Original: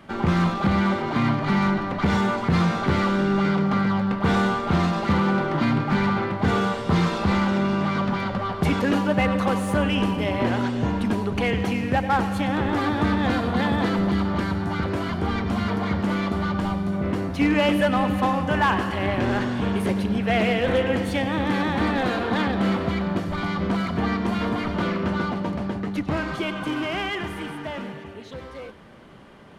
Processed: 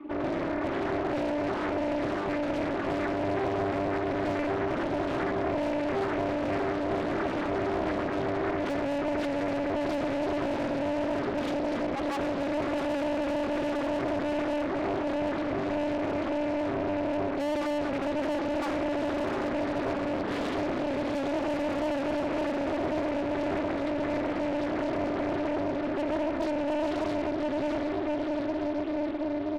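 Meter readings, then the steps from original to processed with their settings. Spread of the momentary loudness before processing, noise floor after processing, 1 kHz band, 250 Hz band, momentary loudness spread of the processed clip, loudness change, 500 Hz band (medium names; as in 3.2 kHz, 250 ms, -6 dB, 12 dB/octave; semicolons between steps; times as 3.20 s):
6 LU, -31 dBFS, -7.5 dB, -7.0 dB, 1 LU, -6.5 dB, -1.5 dB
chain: vowel filter u; treble shelf 6 kHz -6.5 dB; comb 7.1 ms, depth 72%; on a send: echo that smears into a reverb 707 ms, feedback 66%, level -4 dB; on the sum: dynamic bell 300 Hz, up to -4 dB, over -37 dBFS, Q 6.3; high-pass 200 Hz 24 dB/octave; valve stage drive 38 dB, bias 0.4; small resonant body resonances 360/1200 Hz, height 17 dB, ringing for 35 ms; in parallel at +1 dB: peak limiter -31.5 dBFS, peak gain reduction 9 dB; on the sum: loudspeaker Doppler distortion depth 0.86 ms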